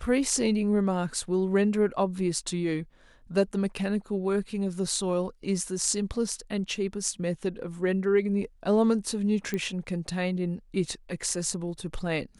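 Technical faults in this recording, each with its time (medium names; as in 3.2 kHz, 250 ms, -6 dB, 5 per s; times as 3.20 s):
9.54 s: pop -17 dBFS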